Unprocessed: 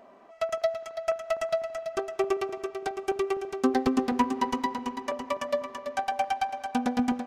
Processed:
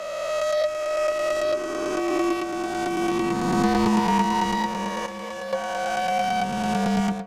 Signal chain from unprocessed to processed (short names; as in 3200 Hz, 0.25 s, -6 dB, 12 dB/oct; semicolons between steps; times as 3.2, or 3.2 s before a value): spectral swells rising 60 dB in 2.76 s; frequency shift -47 Hz; 5.06–5.53 resonator 68 Hz, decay 0.17 s, harmonics odd, mix 80%